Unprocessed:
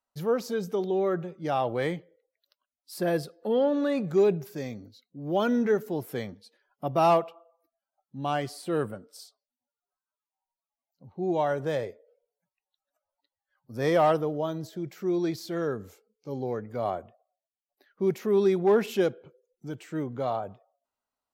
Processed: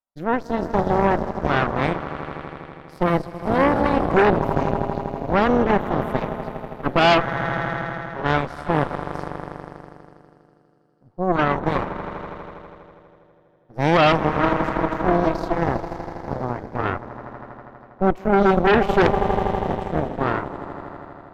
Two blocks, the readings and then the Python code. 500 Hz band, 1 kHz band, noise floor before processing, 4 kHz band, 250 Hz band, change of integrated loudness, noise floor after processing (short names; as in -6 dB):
+5.0 dB, +10.5 dB, under -85 dBFS, +11.0 dB, +7.5 dB, +6.5 dB, -56 dBFS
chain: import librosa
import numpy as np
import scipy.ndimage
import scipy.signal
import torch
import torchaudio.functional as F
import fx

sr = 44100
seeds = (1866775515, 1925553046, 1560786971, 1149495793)

p1 = fx.lowpass(x, sr, hz=1100.0, slope=6)
p2 = fx.peak_eq(p1, sr, hz=460.0, db=-5.5, octaves=0.26)
p3 = p2 + fx.echo_swell(p2, sr, ms=81, loudest=5, wet_db=-12.5, dry=0)
p4 = fx.cheby_harmonics(p3, sr, harmonics=(6, 7), levels_db=(-8, -20), full_scale_db=-13.0)
y = F.gain(torch.from_numpy(p4), 5.5).numpy()